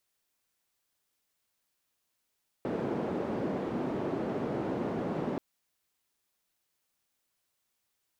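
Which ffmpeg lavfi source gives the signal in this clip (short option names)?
-f lavfi -i "anoisesrc=c=white:d=2.73:r=44100:seed=1,highpass=f=200,lowpass=f=370,volume=-7.9dB"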